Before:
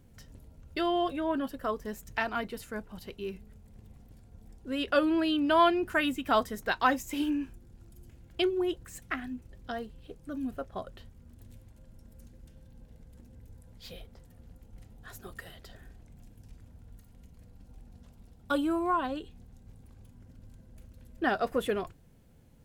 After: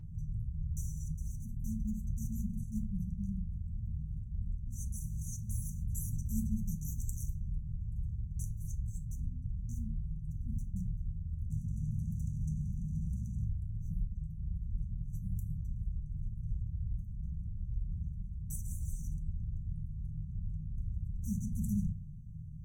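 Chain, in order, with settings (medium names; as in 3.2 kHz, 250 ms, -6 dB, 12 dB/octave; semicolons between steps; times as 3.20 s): local Wiener filter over 25 samples; 11.50–13.45 s: overdrive pedal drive 43 dB, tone 3.2 kHz, clips at -40 dBFS; brick-wall FIR band-stop 210–5800 Hz; FDN reverb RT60 0.33 s, low-frequency decay 1.35×, high-frequency decay 0.7×, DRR 3.5 dB; trim +12.5 dB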